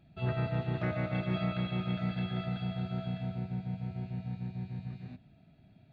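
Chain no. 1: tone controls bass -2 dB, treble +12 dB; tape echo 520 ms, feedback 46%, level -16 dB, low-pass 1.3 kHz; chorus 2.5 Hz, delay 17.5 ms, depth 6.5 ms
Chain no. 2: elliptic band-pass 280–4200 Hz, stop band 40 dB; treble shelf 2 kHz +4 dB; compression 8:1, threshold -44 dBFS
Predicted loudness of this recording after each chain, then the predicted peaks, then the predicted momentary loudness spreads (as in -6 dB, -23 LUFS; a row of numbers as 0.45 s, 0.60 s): -39.5 LUFS, -48.5 LUFS; -24.5 dBFS, -34.0 dBFS; 9 LU, 9 LU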